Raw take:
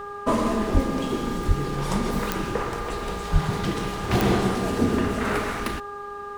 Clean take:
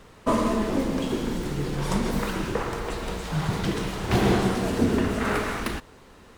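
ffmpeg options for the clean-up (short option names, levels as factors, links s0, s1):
-filter_complex "[0:a]adeclick=t=4,bandreject=f=408.6:t=h:w=4,bandreject=f=817.2:t=h:w=4,bandreject=f=1225.8:t=h:w=4,bandreject=f=1634.4:t=h:w=4,bandreject=f=1200:w=30,asplit=3[s0][s1][s2];[s0]afade=t=out:st=0.73:d=0.02[s3];[s1]highpass=f=140:w=0.5412,highpass=f=140:w=1.3066,afade=t=in:st=0.73:d=0.02,afade=t=out:st=0.85:d=0.02[s4];[s2]afade=t=in:st=0.85:d=0.02[s5];[s3][s4][s5]amix=inputs=3:normalize=0,asplit=3[s6][s7][s8];[s6]afade=t=out:st=1.47:d=0.02[s9];[s7]highpass=f=140:w=0.5412,highpass=f=140:w=1.3066,afade=t=in:st=1.47:d=0.02,afade=t=out:st=1.59:d=0.02[s10];[s8]afade=t=in:st=1.59:d=0.02[s11];[s9][s10][s11]amix=inputs=3:normalize=0,asplit=3[s12][s13][s14];[s12]afade=t=out:st=3.32:d=0.02[s15];[s13]highpass=f=140:w=0.5412,highpass=f=140:w=1.3066,afade=t=in:st=3.32:d=0.02,afade=t=out:st=3.44:d=0.02[s16];[s14]afade=t=in:st=3.44:d=0.02[s17];[s15][s16][s17]amix=inputs=3:normalize=0"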